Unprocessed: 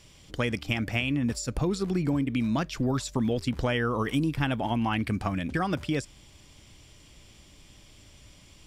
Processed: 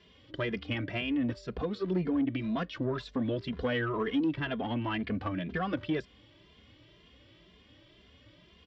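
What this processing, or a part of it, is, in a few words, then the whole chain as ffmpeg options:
barber-pole flanger into a guitar amplifier: -filter_complex "[0:a]asplit=2[link_01][link_02];[link_02]adelay=2.5,afreqshift=2[link_03];[link_01][link_03]amix=inputs=2:normalize=1,asoftclip=type=tanh:threshold=-24dB,highpass=87,equalizer=frequency=89:width_type=q:width=4:gain=-7,equalizer=frequency=140:width_type=q:width=4:gain=-10,equalizer=frequency=220:width_type=q:width=4:gain=-4,equalizer=frequency=820:width_type=q:width=4:gain=-9,equalizer=frequency=1300:width_type=q:width=4:gain=-4,equalizer=frequency=2400:width_type=q:width=4:gain=-7,lowpass=frequency=3400:width=0.5412,lowpass=frequency=3400:width=1.3066,volume=4dB"

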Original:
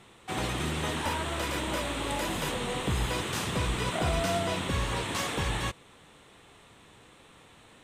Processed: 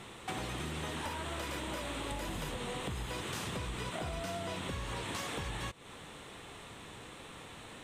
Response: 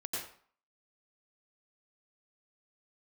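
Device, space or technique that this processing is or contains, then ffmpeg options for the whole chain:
serial compression, peaks first: -filter_complex "[0:a]asettb=1/sr,asplit=3[link_01][link_02][link_03];[link_01]atrim=end=2.114[link_04];[link_02]atrim=start=2.11:end=2.57,asetpts=PTS-STARTPTS,afade=type=in:duration=0.004:curve=qsin,afade=type=out:start_time=0.456:duration=0.004:curve=qsin,lowshelf=frequency=120:gain=9.5[link_05];[link_03]atrim=start=2.566[link_06];[link_04][link_05]acrossfade=duration=0.004:curve1=hsin:curve2=qsin[link_07];[link_07][link_06]acrossfade=duration=0.004:curve1=qsin:curve2=hsin,acompressor=threshold=-38dB:ratio=6,acompressor=threshold=-49dB:ratio=1.5,volume=6dB"

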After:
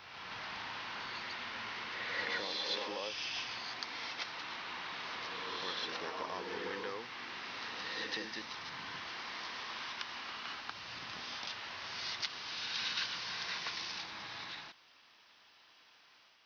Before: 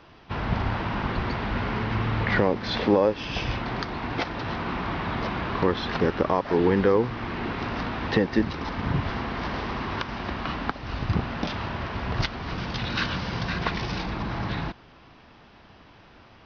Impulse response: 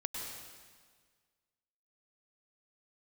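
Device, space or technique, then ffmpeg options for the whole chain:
reverse reverb: -filter_complex "[0:a]aderivative,areverse[link_01];[1:a]atrim=start_sample=2205[link_02];[link_01][link_02]afir=irnorm=-1:irlink=0,areverse,volume=1.5dB"

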